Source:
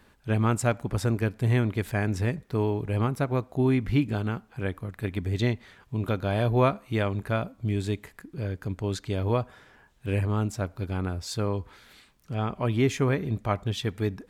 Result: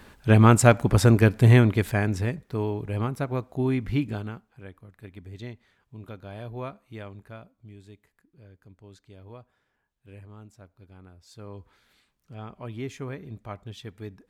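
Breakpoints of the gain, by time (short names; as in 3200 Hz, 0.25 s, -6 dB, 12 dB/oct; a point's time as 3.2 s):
1.47 s +8.5 dB
2.4 s -2 dB
4.1 s -2 dB
4.6 s -13.5 dB
7.08 s -13.5 dB
7.77 s -20 dB
11.2 s -20 dB
11.6 s -11 dB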